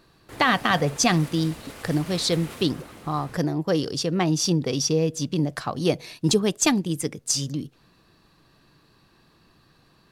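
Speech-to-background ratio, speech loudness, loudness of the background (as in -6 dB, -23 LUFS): 17.0 dB, -24.0 LUFS, -41.0 LUFS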